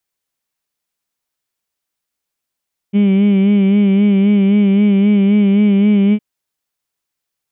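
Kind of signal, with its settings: formant-synthesis vowel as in heed, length 3.26 s, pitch 198 Hz, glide +0.5 st, vibrato 3.8 Hz, vibrato depth 0.6 st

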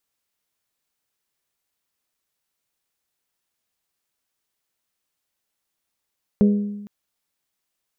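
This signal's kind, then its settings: glass hit bell, length 0.46 s, lowest mode 205 Hz, modes 4, decay 1.07 s, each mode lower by 8.5 dB, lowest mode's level -10.5 dB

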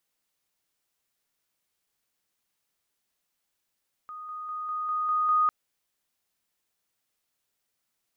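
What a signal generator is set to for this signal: level ladder 1240 Hz -37.5 dBFS, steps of 3 dB, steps 7, 0.20 s 0.00 s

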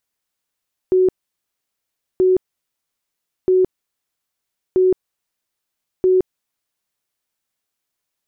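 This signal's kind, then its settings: tone bursts 371 Hz, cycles 62, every 1.28 s, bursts 5, -10.5 dBFS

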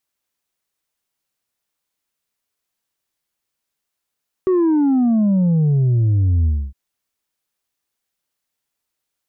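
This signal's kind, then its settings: sub drop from 380 Hz, over 2.26 s, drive 3 dB, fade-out 0.27 s, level -13 dB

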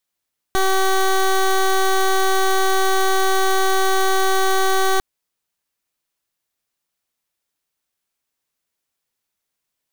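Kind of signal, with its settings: pulse 382 Hz, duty 15% -16 dBFS 4.45 s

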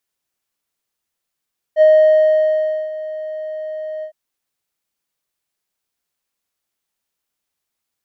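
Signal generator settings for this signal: synth note square D#5 12 dB/oct, low-pass 810 Hz, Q 0.75, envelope 0.5 oct, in 0.08 s, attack 55 ms, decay 1.08 s, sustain -17.5 dB, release 0.09 s, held 2.27 s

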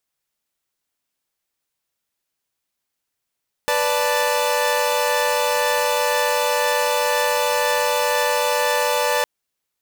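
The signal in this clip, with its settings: chord B4/D5/A5 saw, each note -19.5 dBFS 5.56 s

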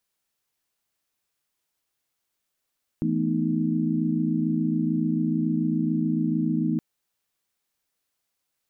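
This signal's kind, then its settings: chord E3/A3/B3/D#4 sine, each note -27 dBFS 3.77 s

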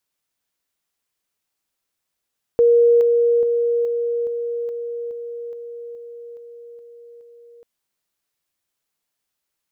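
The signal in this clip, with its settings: level ladder 472 Hz -10 dBFS, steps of -3 dB, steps 12, 0.42 s 0.00 s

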